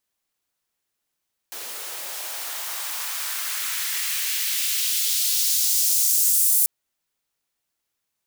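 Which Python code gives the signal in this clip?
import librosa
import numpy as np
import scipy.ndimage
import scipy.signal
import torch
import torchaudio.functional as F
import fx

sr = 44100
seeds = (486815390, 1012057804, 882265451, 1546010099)

y = fx.riser_noise(sr, seeds[0], length_s=5.14, colour='white', kind='highpass', start_hz=390.0, end_hz=9400.0, q=1.2, swell_db=17.5, law='exponential')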